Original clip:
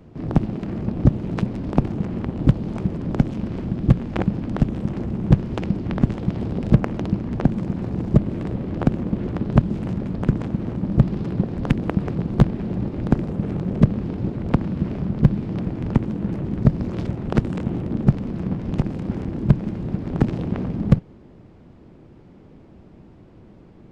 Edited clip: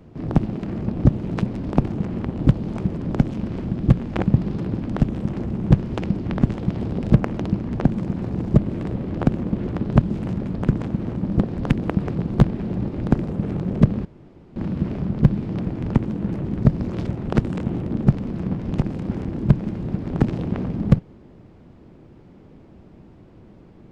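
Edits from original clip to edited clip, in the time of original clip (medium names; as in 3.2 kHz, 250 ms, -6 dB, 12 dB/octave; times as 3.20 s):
11.00–11.40 s: move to 4.34 s
14.05–14.56 s: room tone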